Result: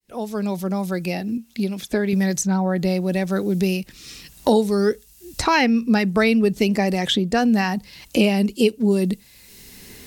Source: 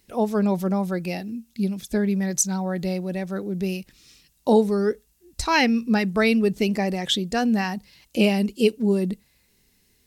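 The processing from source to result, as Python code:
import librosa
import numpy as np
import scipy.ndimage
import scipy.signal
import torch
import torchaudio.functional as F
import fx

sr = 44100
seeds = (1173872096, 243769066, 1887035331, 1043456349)

y = fx.fade_in_head(x, sr, length_s=2.52)
y = fx.bass_treble(y, sr, bass_db=-9, treble_db=-6, at=(1.37, 2.13))
y = fx.band_squash(y, sr, depth_pct=70)
y = F.gain(torch.from_numpy(y), 3.5).numpy()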